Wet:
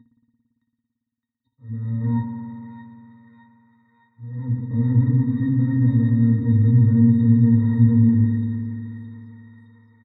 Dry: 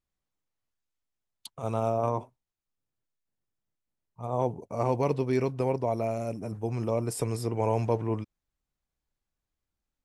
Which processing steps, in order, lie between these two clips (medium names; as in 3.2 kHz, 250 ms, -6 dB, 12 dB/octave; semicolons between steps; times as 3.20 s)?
coarse spectral quantiser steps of 15 dB; peaking EQ 1.1 kHz +6.5 dB 0.52 oct; comb 2.2 ms, depth 58%; upward compressor, threshold -28 dBFS; fuzz box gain 43 dB, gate -42 dBFS; slow attack 592 ms; pitch-class resonator A#, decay 0.15 s; loudest bins only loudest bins 64; FFT filter 150 Hz 0 dB, 270 Hz +9 dB, 400 Hz -19 dB, 910 Hz -22 dB, 1.6 kHz -4 dB, 2.4 kHz -20 dB; feedback echo behind a high-pass 615 ms, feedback 61%, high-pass 1.6 kHz, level -4 dB; spring tank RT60 2.9 s, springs 56 ms, chirp 25 ms, DRR 2 dB; trim +3.5 dB